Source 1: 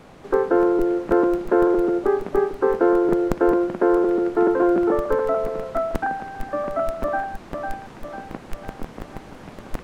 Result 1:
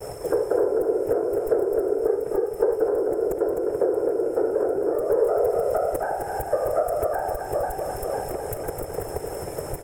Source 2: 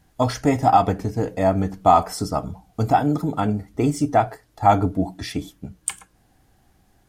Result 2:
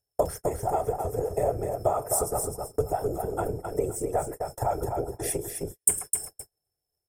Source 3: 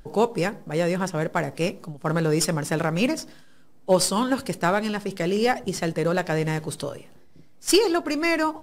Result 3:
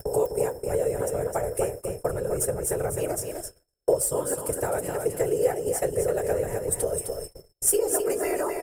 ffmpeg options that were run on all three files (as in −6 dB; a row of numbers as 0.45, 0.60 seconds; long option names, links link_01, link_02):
-filter_complex "[0:a]acrossover=split=3000[link_01][link_02];[link_02]aexciter=amount=1.4:drive=8.9:freq=4400[link_03];[link_01][link_03]amix=inputs=2:normalize=0,aeval=exprs='val(0)+0.00708*sin(2*PI*5300*n/s)':channel_layout=same,equalizer=frequency=140:width=0.84:gain=10,acompressor=mode=upward:threshold=-32dB:ratio=2.5,afftfilt=real='hypot(re,im)*cos(2*PI*random(0))':imag='hypot(re,im)*sin(2*PI*random(1))':win_size=512:overlap=0.75,acompressor=threshold=-35dB:ratio=12,firequalizer=gain_entry='entry(110,0);entry(220,-14);entry(430,14);entry(880,4);entry(3000,-4);entry(4500,-14);entry(8000,13);entry(13000,10)':delay=0.05:min_phase=1,asplit=2[link_04][link_05];[link_05]aecho=0:1:258|516|774:0.531|0.133|0.0332[link_06];[link_04][link_06]amix=inputs=2:normalize=0,agate=range=-44dB:threshold=-41dB:ratio=16:detection=peak,bandreject=frequency=1100:width=12,volume=6dB"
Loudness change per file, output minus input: −3.5, −7.5, −2.5 LU